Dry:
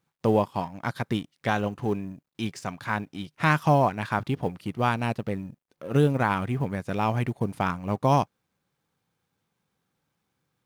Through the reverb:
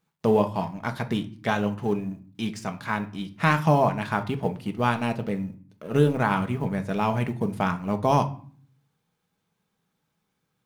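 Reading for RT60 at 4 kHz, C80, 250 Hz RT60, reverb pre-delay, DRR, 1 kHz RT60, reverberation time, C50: 0.35 s, 20.0 dB, 0.75 s, 4 ms, 6.0 dB, 0.45 s, 0.45 s, 15.5 dB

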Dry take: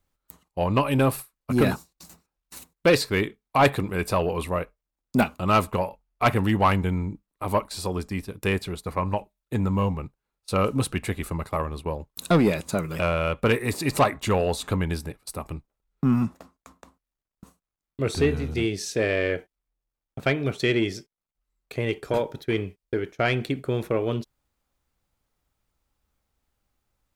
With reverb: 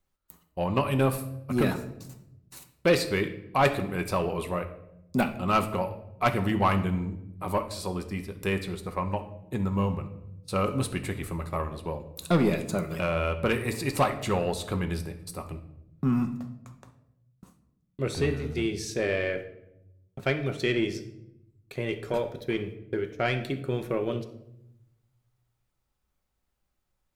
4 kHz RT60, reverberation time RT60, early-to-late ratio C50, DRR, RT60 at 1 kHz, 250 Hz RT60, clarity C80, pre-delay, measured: 0.55 s, 0.85 s, 11.5 dB, 6.5 dB, 0.75 s, 1.2 s, 14.5 dB, 5 ms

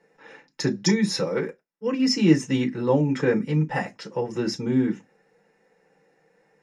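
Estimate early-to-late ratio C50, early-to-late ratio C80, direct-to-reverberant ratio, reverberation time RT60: 27.5 dB, 40.0 dB, -1.0 dB, no single decay rate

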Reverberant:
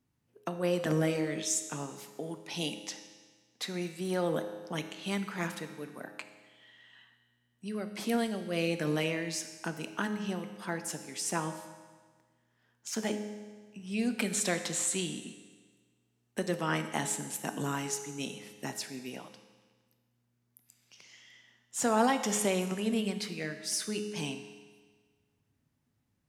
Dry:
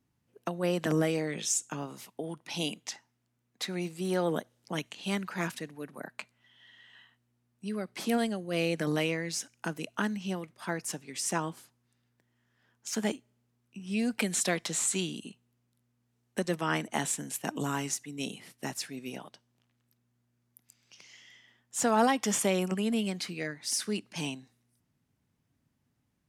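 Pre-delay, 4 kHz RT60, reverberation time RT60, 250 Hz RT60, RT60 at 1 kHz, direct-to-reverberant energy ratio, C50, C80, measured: 9 ms, 1.4 s, 1.5 s, 1.5 s, 1.5 s, 7.5 dB, 9.5 dB, 10.5 dB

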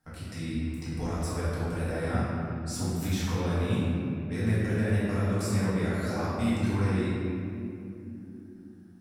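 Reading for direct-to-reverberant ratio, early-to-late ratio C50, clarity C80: -10.5 dB, -4.0 dB, -1.5 dB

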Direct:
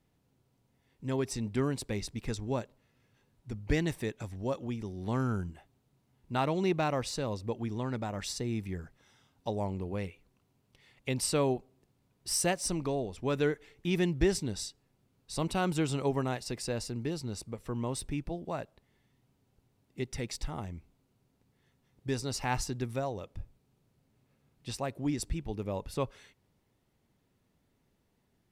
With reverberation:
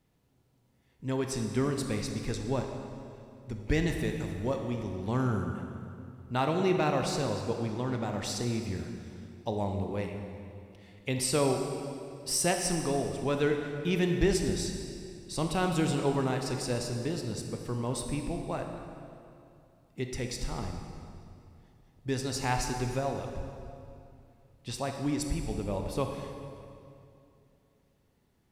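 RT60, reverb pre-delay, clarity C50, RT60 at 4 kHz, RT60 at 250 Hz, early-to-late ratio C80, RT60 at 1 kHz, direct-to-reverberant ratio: 2.6 s, 19 ms, 4.5 dB, 2.0 s, 2.9 s, 5.5 dB, 2.5 s, 3.5 dB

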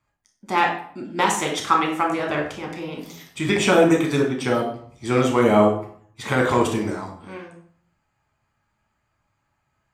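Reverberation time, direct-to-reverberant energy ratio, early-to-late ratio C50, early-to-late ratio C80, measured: 0.55 s, -0.5 dB, 6.0 dB, 10.0 dB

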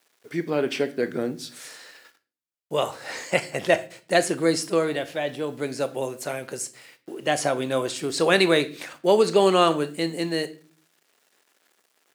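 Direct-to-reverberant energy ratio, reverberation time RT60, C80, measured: 11.5 dB, 0.40 s, 22.0 dB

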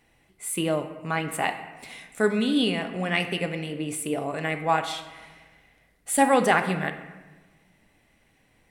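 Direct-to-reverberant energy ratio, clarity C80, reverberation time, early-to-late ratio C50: 7.0 dB, 11.5 dB, 1.2 s, 9.5 dB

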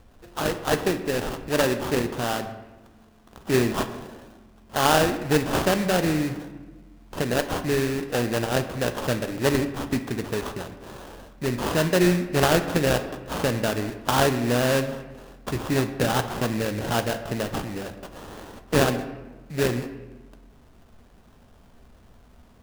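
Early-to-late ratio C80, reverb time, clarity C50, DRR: 12.5 dB, 1.3 s, 10.5 dB, 8.5 dB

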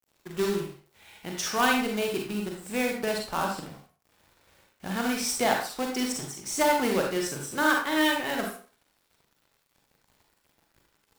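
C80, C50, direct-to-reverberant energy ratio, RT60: 8.0 dB, 3.0 dB, 0.5 dB, 0.40 s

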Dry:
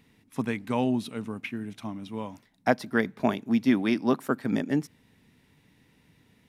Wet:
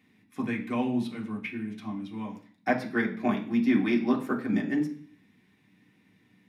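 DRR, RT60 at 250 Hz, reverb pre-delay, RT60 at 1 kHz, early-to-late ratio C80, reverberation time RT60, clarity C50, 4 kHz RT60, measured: -3.5 dB, 0.60 s, 3 ms, 0.45 s, 14.5 dB, 0.45 s, 11.0 dB, 0.55 s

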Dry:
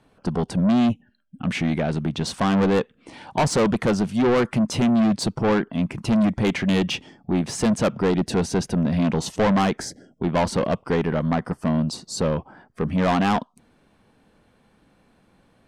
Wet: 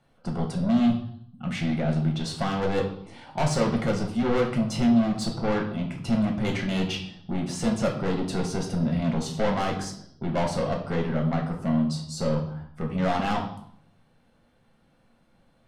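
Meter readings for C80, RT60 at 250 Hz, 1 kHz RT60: 11.0 dB, 0.80 s, 0.65 s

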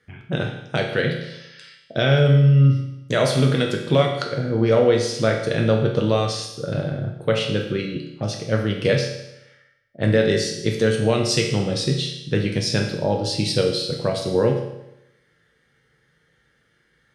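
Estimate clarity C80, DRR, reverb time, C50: 7.5 dB, 0.5 dB, 0.90 s, 5.0 dB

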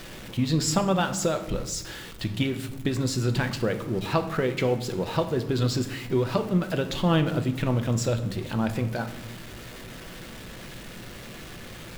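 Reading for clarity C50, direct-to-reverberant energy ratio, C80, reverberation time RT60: 11.5 dB, 6.5 dB, 14.5 dB, 0.90 s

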